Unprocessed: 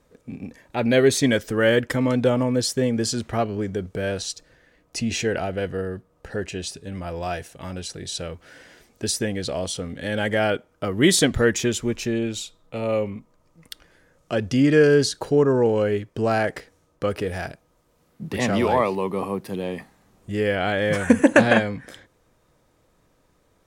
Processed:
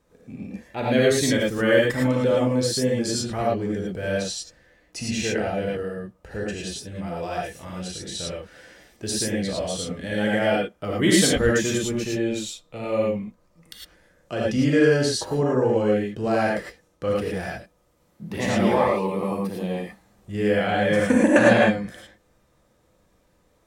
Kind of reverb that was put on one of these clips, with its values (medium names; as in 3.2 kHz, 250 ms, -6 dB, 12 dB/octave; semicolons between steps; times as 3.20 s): gated-style reverb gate 130 ms rising, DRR -3.5 dB; trim -5.5 dB